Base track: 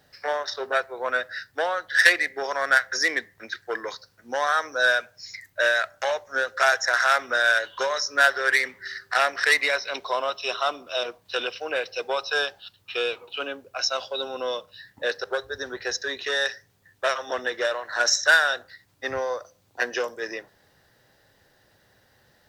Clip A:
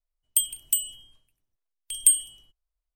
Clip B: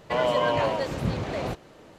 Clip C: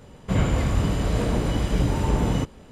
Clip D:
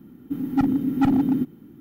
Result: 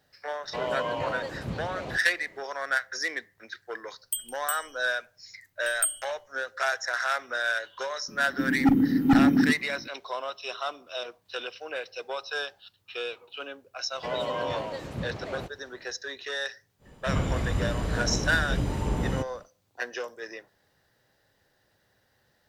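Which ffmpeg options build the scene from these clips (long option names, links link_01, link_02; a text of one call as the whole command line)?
ffmpeg -i bed.wav -i cue0.wav -i cue1.wav -i cue2.wav -i cue3.wav -filter_complex "[2:a]asplit=2[link_01][link_02];[0:a]volume=-7.5dB[link_03];[link_01]atrim=end=1.98,asetpts=PTS-STARTPTS,volume=-7dB,afade=type=in:duration=0.004:curve=hsin,afade=type=out:start_time=1.976:duration=0.004:curve=hsin,adelay=430[link_04];[1:a]atrim=end=2.95,asetpts=PTS-STARTPTS,volume=-8.5dB,afade=type=in:duration=0.004:curve=hsin,afade=type=out:start_time=2.946:duration=0.004:curve=hsin,adelay=3760[link_05];[4:a]atrim=end=1.8,asetpts=PTS-STARTPTS,afade=type=in:duration=0.004:curve=hsin,afade=type=out:start_time=1.796:duration=0.004:curve=hsin,adelay=8080[link_06];[link_02]atrim=end=1.98,asetpts=PTS-STARTPTS,volume=-7.5dB,afade=type=in:duration=0.004:curve=hsin,afade=type=out:start_time=1.976:duration=0.004:curve=hsin,adelay=13930[link_07];[3:a]atrim=end=2.71,asetpts=PTS-STARTPTS,volume=-6dB,afade=type=in:duration=0.1,afade=type=out:start_time=2.61:duration=0.1,adelay=16780[link_08];[link_03][link_04][link_05][link_06][link_07][link_08]amix=inputs=6:normalize=0" out.wav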